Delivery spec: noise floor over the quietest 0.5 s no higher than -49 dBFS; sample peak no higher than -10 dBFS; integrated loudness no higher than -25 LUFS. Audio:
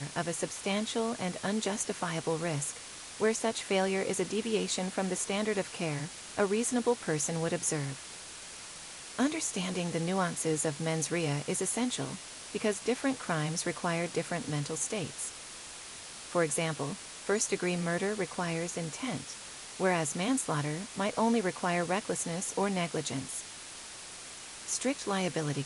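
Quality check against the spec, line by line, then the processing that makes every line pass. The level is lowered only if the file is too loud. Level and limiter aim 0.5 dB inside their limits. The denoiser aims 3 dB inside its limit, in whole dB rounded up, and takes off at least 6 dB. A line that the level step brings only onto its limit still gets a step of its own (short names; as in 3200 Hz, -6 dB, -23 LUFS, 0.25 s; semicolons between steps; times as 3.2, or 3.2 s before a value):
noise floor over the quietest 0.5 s -46 dBFS: fail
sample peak -15.0 dBFS: OK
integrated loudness -32.5 LUFS: OK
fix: denoiser 6 dB, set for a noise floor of -46 dBFS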